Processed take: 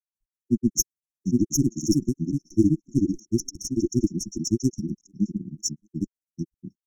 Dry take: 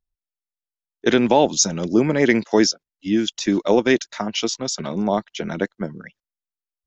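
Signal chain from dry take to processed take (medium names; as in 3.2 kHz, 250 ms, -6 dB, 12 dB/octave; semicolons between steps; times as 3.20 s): one-sided clip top -21 dBFS; speakerphone echo 90 ms, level -28 dB; granulator 77 ms, grains 16 per s, spray 937 ms, pitch spread up and down by 0 st; brick-wall FIR band-stop 370–5400 Hz; trim +4 dB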